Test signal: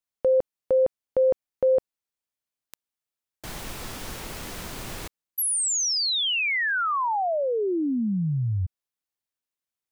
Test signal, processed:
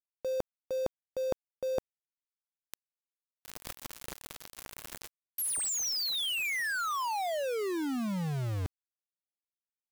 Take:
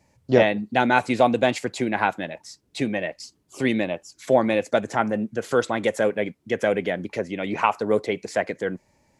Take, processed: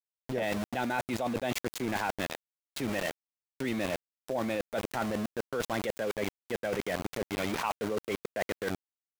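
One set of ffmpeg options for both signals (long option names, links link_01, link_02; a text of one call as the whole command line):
ffmpeg -i in.wav -af "aeval=exprs='val(0)*gte(abs(val(0)),0.0422)':channel_layout=same,areverse,acompressor=threshold=-34dB:ratio=6:attack=12:release=25:detection=peak,areverse" out.wav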